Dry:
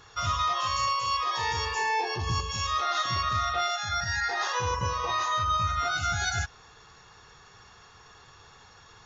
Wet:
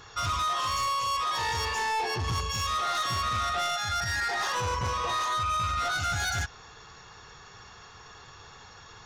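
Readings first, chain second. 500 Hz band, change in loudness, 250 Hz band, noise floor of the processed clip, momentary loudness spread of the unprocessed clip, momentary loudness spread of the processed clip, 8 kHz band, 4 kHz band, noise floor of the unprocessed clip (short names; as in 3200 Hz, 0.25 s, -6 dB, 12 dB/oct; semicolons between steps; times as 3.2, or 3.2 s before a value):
-0.5 dB, -0.5 dB, +0.5 dB, -50 dBFS, 3 LU, 21 LU, n/a, 0.0 dB, -54 dBFS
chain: soft clip -29.5 dBFS, distortion -11 dB; gain +4 dB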